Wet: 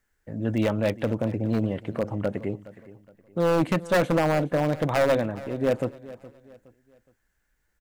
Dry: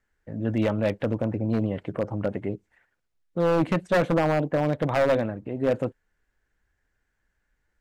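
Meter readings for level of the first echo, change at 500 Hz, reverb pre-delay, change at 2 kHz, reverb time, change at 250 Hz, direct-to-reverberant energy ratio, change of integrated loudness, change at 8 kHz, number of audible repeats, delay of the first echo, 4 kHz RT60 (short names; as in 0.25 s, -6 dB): -18.0 dB, 0.0 dB, none, +1.0 dB, none, 0.0 dB, none, 0.0 dB, n/a, 2, 0.417 s, none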